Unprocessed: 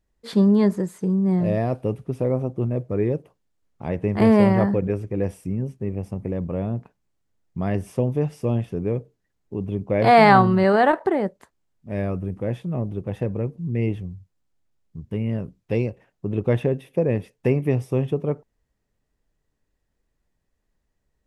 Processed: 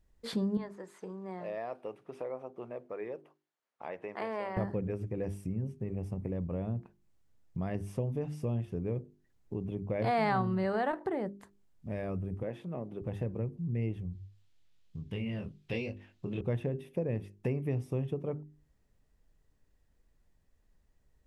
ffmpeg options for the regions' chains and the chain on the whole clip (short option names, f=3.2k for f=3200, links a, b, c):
-filter_complex "[0:a]asettb=1/sr,asplit=3[a][b][c];[a]atrim=end=0.574[d];[b]atrim=start=0.57:end=4.57,asetpts=PTS-STARTPTS,afade=t=in:d=0.004:c=qsin,afade=t=out:st=3.996:d=0.004:c=qsin,highpass=740,aemphasis=mode=reproduction:type=75kf[e];[c]atrim=start=4.566[f];[d][e]acrossfade=d=0.004:c1=hsin:c2=qsin[g];[g][f]acrossfade=d=0.004:c1=qsin:c2=hsin,asettb=1/sr,asplit=3[h][i][j];[h]atrim=end=12.434[k];[i]atrim=start=12.43:end=13.02,asetpts=PTS-STARTPTS,afade=t=in:d=0.004:c=qsin,afade=t=out:st=0.586:d=0.004:c=qsin,highpass=140,bass=f=250:g=-9,treble=f=4k:g=-6,acompressor=mode=upward:threshold=-39dB:ratio=2.5:attack=3.2:release=140:knee=2.83:detection=peak[l];[j]atrim=start=13.016[m];[k][l]acrossfade=d=0.004:c1=hsin:c2=qsin[n];[n][m]acrossfade=d=0.004:c1=qsin:c2=hsin,asettb=1/sr,asplit=3[o][p][q];[o]atrim=end=14.134[r];[p]atrim=start=14.13:end=16.41,asetpts=PTS-STARTPTS,afade=t=in:d=0.004:c=qsin,afade=t=out:st=2.276:d=0.004:c=qsin,equalizer=f=3.4k:t=o:w=1.8:g=14.5,flanger=delay=20:depth=4.8:speed=1.1[s];[q]atrim=start=16.406[t];[r][s]acrossfade=d=0.004:c1=hsin:c2=qsin[u];[u][t]acrossfade=d=0.004:c1=qsin:c2=hsin,lowshelf=f=150:g=6.5,bandreject=f=50:t=h:w=6,bandreject=f=100:t=h:w=6,bandreject=f=150:t=h:w=6,bandreject=f=200:t=h:w=6,bandreject=f=250:t=h:w=6,bandreject=f=300:t=h:w=6,bandreject=f=350:t=h:w=6,bandreject=f=400:t=h:w=6,acompressor=threshold=-41dB:ratio=2"